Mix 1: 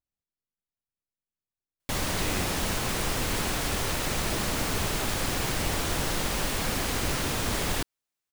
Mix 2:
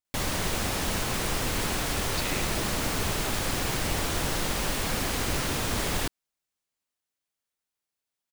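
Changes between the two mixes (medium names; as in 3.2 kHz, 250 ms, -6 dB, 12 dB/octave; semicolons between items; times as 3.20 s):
speech: add tilt EQ +3 dB/octave; background: entry -1.75 s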